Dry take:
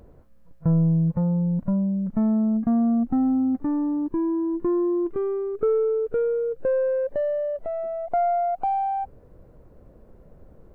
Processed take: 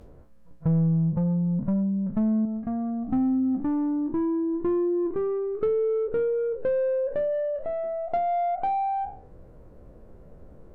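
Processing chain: spectral sustain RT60 0.41 s; 2.45–3.08 s: ten-band graphic EQ 125 Hz -4 dB, 250 Hz -7 dB, 1 kHz -6 dB; low-pass that closes with the level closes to 580 Hz, closed at -18 dBFS; in parallel at -3.5 dB: saturation -25 dBFS, distortion -12 dB; on the sum: trim -4.5 dB

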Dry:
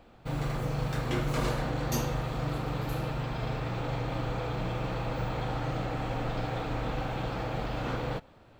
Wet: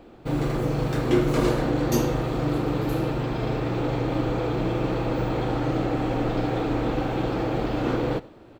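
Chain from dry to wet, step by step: peaking EQ 340 Hz +11.5 dB 1 oct; delay 92 ms -21 dB; trim +3.5 dB

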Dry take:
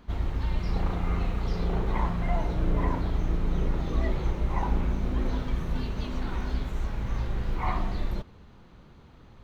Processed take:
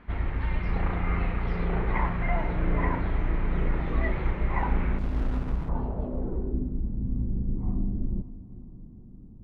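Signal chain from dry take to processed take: echo that smears into a reverb 497 ms, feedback 52%, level -16 dB; low-pass sweep 2.1 kHz -> 240 Hz, 5.06–6.84 s; 4.98–5.69 s: sliding maximum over 65 samples

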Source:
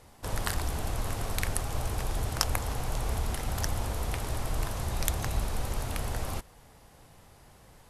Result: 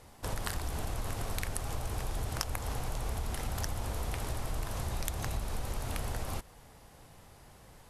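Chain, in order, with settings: compression 4:1, threshold -31 dBFS, peak gain reduction 9.5 dB

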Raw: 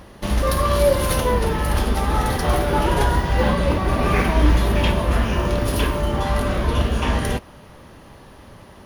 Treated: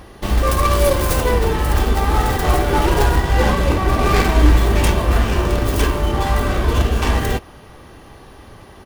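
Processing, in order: tracing distortion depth 0.45 ms; comb 2.6 ms, depth 31%; trim +2.5 dB

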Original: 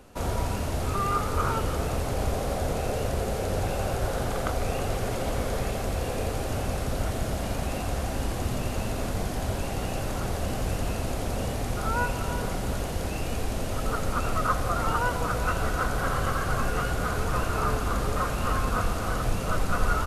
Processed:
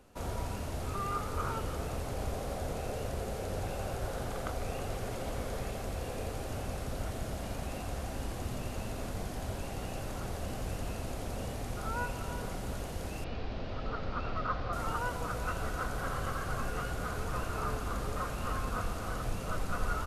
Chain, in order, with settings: 13.24–14.73 s: steep low-pass 4.8 kHz 36 dB/octave; trim -8.5 dB

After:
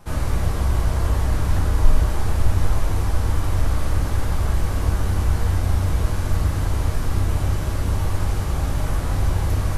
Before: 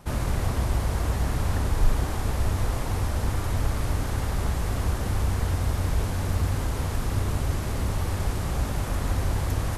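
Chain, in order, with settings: simulated room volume 63 m³, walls mixed, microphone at 0.7 m; trim -1 dB

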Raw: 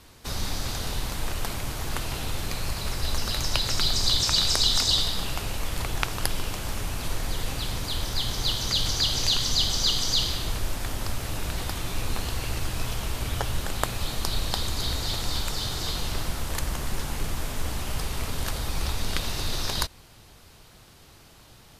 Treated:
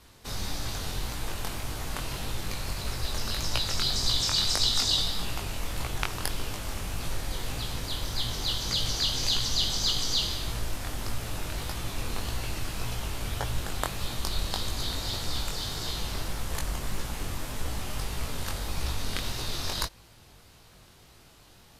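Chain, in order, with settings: chorus 1.7 Hz, delay 17 ms, depth 6.1 ms

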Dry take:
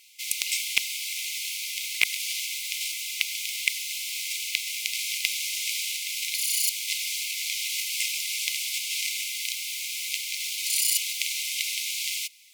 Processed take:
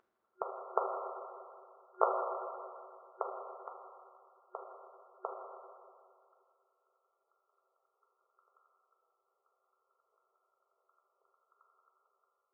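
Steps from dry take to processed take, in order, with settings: FFT band-pass 370–1400 Hz; tilt EQ -2.5 dB/octave; reverberation RT60 2.3 s, pre-delay 5 ms, DRR -2 dB; trim +17 dB

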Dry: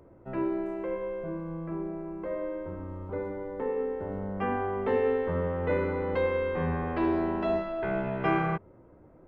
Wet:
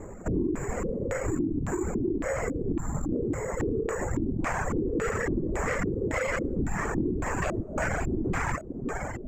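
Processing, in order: in parallel at 0 dB: peak limiter -25 dBFS, peak gain reduction 9.5 dB; on the sum: bass shelf 170 Hz +6.5 dB; on a send: echo that smears into a reverb 539 ms, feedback 67%, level -14.5 dB; on the sum: saturation -23.5 dBFS, distortion -11 dB; LPC vocoder at 8 kHz whisper; careless resampling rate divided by 6×, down none, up zero stuff; dynamic bell 600 Hz, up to -4 dB, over -39 dBFS, Q 1.7; LFO low-pass square 1.8 Hz 330–2000 Hz; reverb removal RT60 1.9 s; compression, threshold -30 dBFS, peak gain reduction 10 dB; trim +5.5 dB

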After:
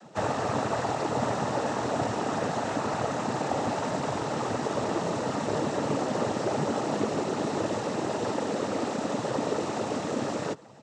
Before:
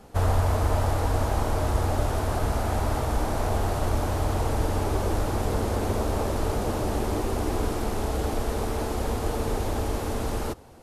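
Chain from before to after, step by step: comb 4.6 ms, depth 49%; noise-vocoded speech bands 12

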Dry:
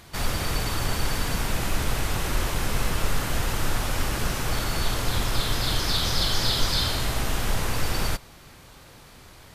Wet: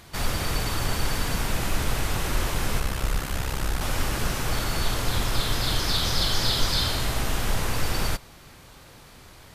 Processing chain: 2.79–3.81 s: ring modulator 33 Hz

